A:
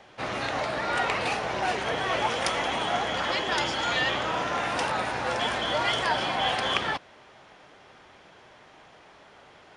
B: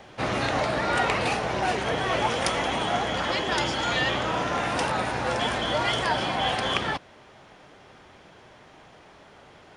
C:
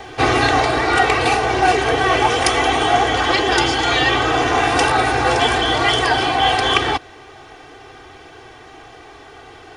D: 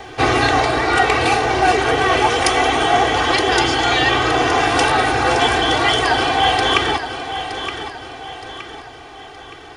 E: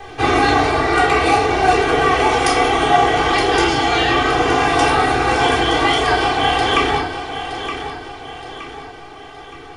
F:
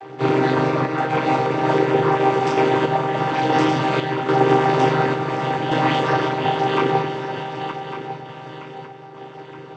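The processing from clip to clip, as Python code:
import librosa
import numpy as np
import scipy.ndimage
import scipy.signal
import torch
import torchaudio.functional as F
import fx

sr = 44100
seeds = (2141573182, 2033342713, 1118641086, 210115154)

y1 = fx.low_shelf(x, sr, hz=380.0, db=7.0)
y1 = fx.rider(y1, sr, range_db=4, speed_s=2.0)
y1 = fx.high_shelf(y1, sr, hz=9700.0, db=7.0)
y2 = y1 + 0.88 * np.pad(y1, (int(2.6 * sr / 1000.0), 0))[:len(y1)]
y2 = fx.rider(y2, sr, range_db=10, speed_s=0.5)
y2 = y2 * librosa.db_to_amplitude(7.5)
y3 = fx.echo_feedback(y2, sr, ms=919, feedback_pct=43, wet_db=-10)
y4 = fx.room_shoebox(y3, sr, seeds[0], volume_m3=540.0, walls='furnished', distance_m=3.8)
y4 = y4 * librosa.db_to_amplitude(-6.0)
y5 = fx.chord_vocoder(y4, sr, chord='minor triad', root=48)
y5 = fx.tremolo_random(y5, sr, seeds[1], hz=3.5, depth_pct=55)
y5 = y5 + 10.0 ** (-12.0 / 20.0) * np.pad(y5, (int(1152 * sr / 1000.0), 0))[:len(y5)]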